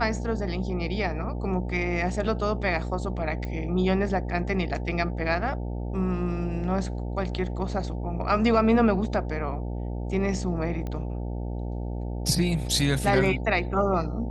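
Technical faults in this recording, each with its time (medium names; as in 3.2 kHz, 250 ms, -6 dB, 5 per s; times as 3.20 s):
buzz 60 Hz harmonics 15 -31 dBFS
3.45 s: pop -23 dBFS
10.87 s: pop -22 dBFS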